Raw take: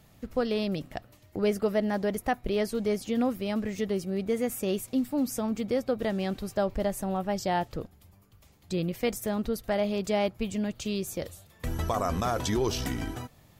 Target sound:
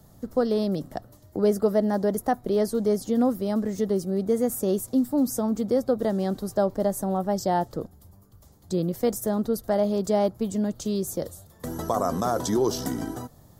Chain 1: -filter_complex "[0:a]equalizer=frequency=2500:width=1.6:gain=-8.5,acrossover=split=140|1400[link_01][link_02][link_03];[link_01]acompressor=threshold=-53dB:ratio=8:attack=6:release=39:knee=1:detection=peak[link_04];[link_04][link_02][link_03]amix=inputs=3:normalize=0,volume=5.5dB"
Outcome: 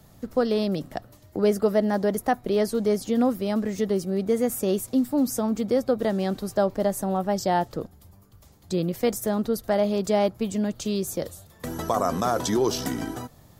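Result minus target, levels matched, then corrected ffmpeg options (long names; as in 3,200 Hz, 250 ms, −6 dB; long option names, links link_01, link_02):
2,000 Hz band +5.0 dB
-filter_complex "[0:a]equalizer=frequency=2500:width=1.6:gain=-20,acrossover=split=140|1400[link_01][link_02][link_03];[link_01]acompressor=threshold=-53dB:ratio=8:attack=6:release=39:knee=1:detection=peak[link_04];[link_04][link_02][link_03]amix=inputs=3:normalize=0,volume=5.5dB"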